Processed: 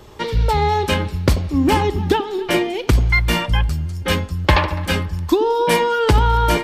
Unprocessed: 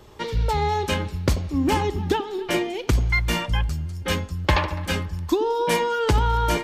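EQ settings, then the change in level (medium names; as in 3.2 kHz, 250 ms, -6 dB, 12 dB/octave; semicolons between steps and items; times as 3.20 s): dynamic bell 6.6 kHz, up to -5 dB, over -52 dBFS, Q 3.1; +5.5 dB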